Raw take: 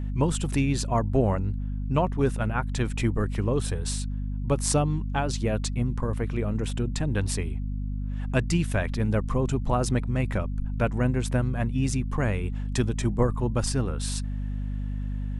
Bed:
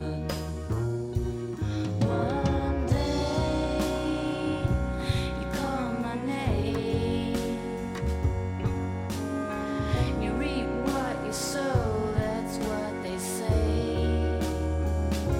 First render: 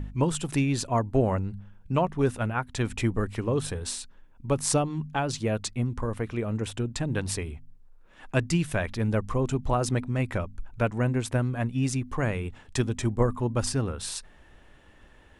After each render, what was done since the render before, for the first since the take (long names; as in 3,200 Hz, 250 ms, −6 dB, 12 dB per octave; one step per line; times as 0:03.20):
hum removal 50 Hz, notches 5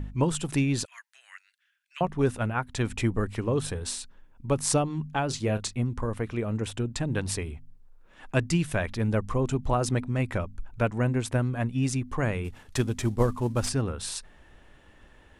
0:00.85–0:02.01: Chebyshev high-pass filter 1,700 Hz, order 4
0:05.28–0:05.75: double-tracking delay 29 ms −11 dB
0:12.44–0:13.69: variable-slope delta modulation 64 kbit/s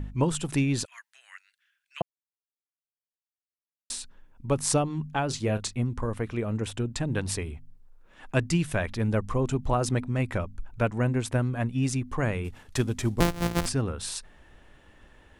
0:02.02–0:03.90: silence
0:13.20–0:13.66: samples sorted by size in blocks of 256 samples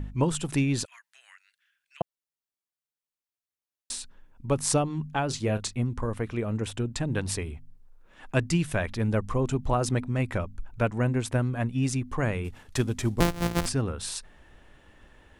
0:00.95–0:02.01: downward compressor 5 to 1, threshold −48 dBFS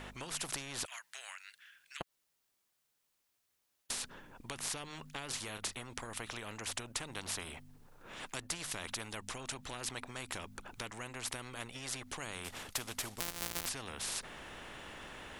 downward compressor, threshold −28 dBFS, peak gain reduction 10.5 dB
every bin compressed towards the loudest bin 4 to 1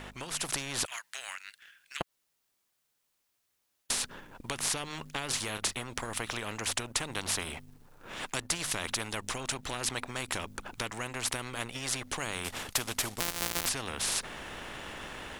leveller curve on the samples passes 1
automatic gain control gain up to 4 dB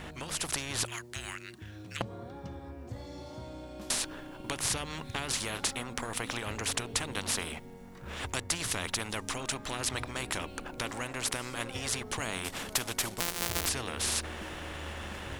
mix in bed −17 dB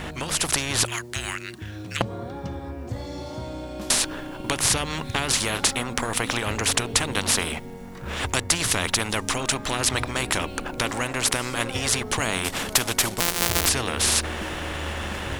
level +10 dB
brickwall limiter −2 dBFS, peak gain reduction 2 dB